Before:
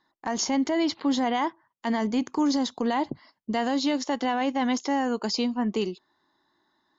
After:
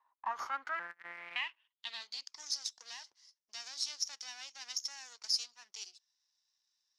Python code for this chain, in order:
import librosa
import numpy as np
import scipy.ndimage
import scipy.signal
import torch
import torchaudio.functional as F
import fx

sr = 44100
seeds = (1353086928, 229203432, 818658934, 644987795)

y = fx.sample_sort(x, sr, block=256, at=(0.79, 1.36))
y = scipy.signal.sosfilt(scipy.signal.butter(2, 720.0, 'highpass', fs=sr, output='sos'), y)
y = np.maximum(y, 0.0)
y = fx.filter_sweep_bandpass(y, sr, from_hz=990.0, to_hz=5600.0, start_s=0.2, end_s=2.43, q=6.4)
y = y * librosa.db_to_amplitude(10.0)